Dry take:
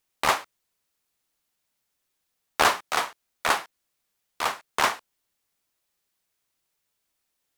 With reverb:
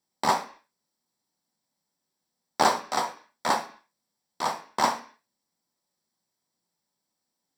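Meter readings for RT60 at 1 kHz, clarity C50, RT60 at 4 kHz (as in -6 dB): 0.45 s, 13.0 dB, no reading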